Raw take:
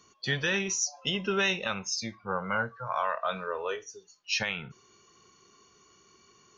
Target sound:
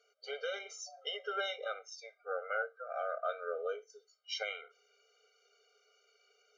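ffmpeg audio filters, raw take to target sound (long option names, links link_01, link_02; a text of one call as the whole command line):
ffmpeg -i in.wav -af "asetnsamples=nb_out_samples=441:pad=0,asendcmd='1.56 lowpass f 1200;3.9 lowpass f 3300',lowpass=frequency=2100:poles=1,afftfilt=real='re*eq(mod(floor(b*sr/1024/400),2),1)':imag='im*eq(mod(floor(b*sr/1024/400),2),1)':win_size=1024:overlap=0.75,volume=-2dB" out.wav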